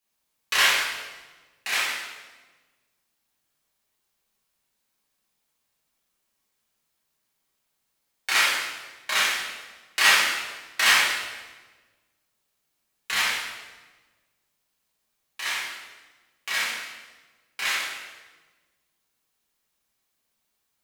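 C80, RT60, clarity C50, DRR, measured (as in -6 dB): 3.0 dB, 1.3 s, 0.0 dB, -9.0 dB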